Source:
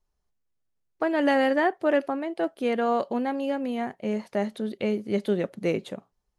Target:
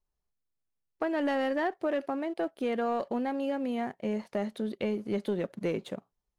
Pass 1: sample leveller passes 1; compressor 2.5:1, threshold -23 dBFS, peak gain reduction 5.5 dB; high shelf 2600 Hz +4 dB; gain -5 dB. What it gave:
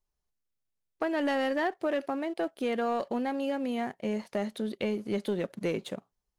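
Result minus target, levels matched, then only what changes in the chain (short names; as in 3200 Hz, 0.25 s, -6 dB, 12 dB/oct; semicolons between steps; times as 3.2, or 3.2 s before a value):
4000 Hz band +3.5 dB
change: high shelf 2600 Hz -2 dB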